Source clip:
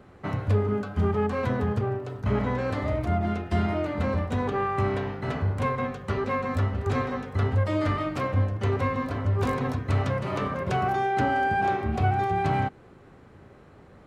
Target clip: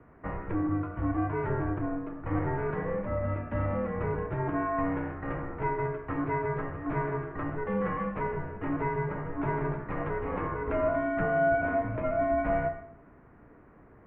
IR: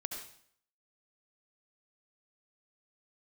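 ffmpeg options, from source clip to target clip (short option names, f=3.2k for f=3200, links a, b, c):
-filter_complex "[0:a]highpass=f=150:t=q:w=0.5412,highpass=f=150:t=q:w=1.307,lowpass=f=2.3k:t=q:w=0.5176,lowpass=f=2.3k:t=q:w=0.7071,lowpass=f=2.3k:t=q:w=1.932,afreqshift=-110,bandreject=f=83.25:t=h:w=4,bandreject=f=166.5:t=h:w=4,bandreject=f=249.75:t=h:w=4,bandreject=f=333:t=h:w=4,bandreject=f=416.25:t=h:w=4,bandreject=f=499.5:t=h:w=4,bandreject=f=582.75:t=h:w=4,bandreject=f=666:t=h:w=4,bandreject=f=749.25:t=h:w=4,bandreject=f=832.5:t=h:w=4,bandreject=f=915.75:t=h:w=4,bandreject=f=999:t=h:w=4,bandreject=f=1.08225k:t=h:w=4,bandreject=f=1.1655k:t=h:w=4,bandreject=f=1.24875k:t=h:w=4,bandreject=f=1.332k:t=h:w=4,bandreject=f=1.41525k:t=h:w=4,bandreject=f=1.4985k:t=h:w=4,bandreject=f=1.58175k:t=h:w=4,bandreject=f=1.665k:t=h:w=4,bandreject=f=1.74825k:t=h:w=4,bandreject=f=1.8315k:t=h:w=4,bandreject=f=1.91475k:t=h:w=4,bandreject=f=1.998k:t=h:w=4,bandreject=f=2.08125k:t=h:w=4,bandreject=f=2.1645k:t=h:w=4,bandreject=f=2.24775k:t=h:w=4,bandreject=f=2.331k:t=h:w=4,bandreject=f=2.41425k:t=h:w=4,asplit=2[a][b];[1:a]atrim=start_sample=2205[c];[b][c]afir=irnorm=-1:irlink=0,volume=-2dB[d];[a][d]amix=inputs=2:normalize=0,volume=-6.5dB"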